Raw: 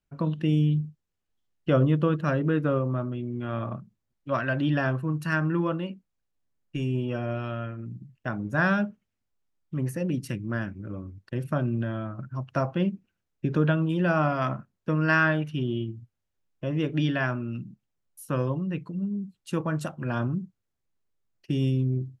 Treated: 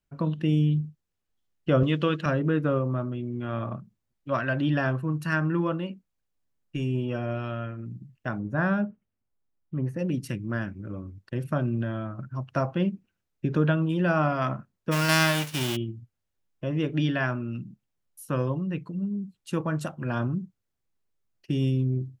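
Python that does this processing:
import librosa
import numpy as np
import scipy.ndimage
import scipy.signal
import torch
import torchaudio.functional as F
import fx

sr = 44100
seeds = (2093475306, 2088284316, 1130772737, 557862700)

y = fx.weighting(x, sr, curve='D', at=(1.83, 2.26))
y = fx.lowpass(y, sr, hz=1100.0, slope=6, at=(8.39, 9.99))
y = fx.envelope_flatten(y, sr, power=0.3, at=(14.91, 15.75), fade=0.02)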